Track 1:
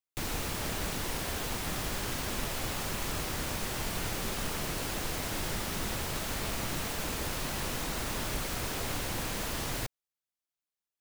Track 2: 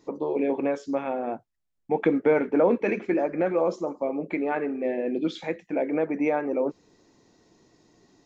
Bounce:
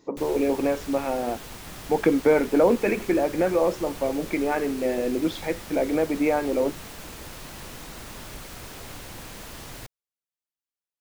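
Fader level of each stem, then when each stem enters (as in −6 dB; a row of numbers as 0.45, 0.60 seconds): −5.5, +2.0 decibels; 0.00, 0.00 seconds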